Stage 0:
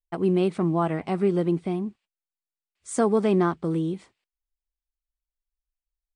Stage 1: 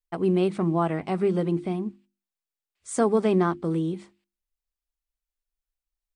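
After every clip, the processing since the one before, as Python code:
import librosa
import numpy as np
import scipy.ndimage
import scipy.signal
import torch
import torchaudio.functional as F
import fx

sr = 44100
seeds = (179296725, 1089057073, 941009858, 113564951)

y = fx.hum_notches(x, sr, base_hz=50, count=7)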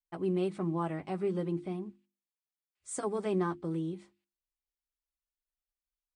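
y = fx.dynamic_eq(x, sr, hz=8300.0, q=2.0, threshold_db=-53.0, ratio=4.0, max_db=5)
y = fx.notch_comb(y, sr, f0_hz=230.0)
y = y * librosa.db_to_amplitude(-8.0)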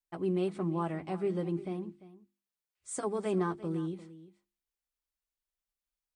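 y = x + 10.0 ** (-17.0 / 20.0) * np.pad(x, (int(346 * sr / 1000.0), 0))[:len(x)]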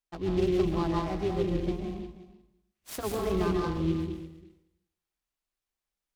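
y = fx.octave_divider(x, sr, octaves=2, level_db=-4.0)
y = fx.rev_plate(y, sr, seeds[0], rt60_s=0.79, hf_ratio=0.9, predelay_ms=115, drr_db=0.0)
y = fx.noise_mod_delay(y, sr, seeds[1], noise_hz=2700.0, depth_ms=0.033)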